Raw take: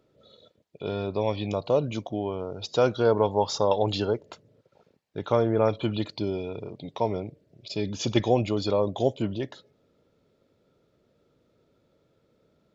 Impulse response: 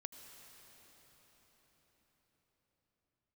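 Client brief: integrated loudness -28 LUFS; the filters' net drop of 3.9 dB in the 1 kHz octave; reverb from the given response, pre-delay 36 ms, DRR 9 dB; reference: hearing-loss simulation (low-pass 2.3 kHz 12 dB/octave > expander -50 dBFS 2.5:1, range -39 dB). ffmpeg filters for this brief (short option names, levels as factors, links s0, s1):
-filter_complex "[0:a]equalizer=f=1000:t=o:g=-5,asplit=2[s0][s1];[1:a]atrim=start_sample=2205,adelay=36[s2];[s1][s2]afir=irnorm=-1:irlink=0,volume=0.562[s3];[s0][s3]amix=inputs=2:normalize=0,lowpass=2300,agate=range=0.0112:threshold=0.00316:ratio=2.5"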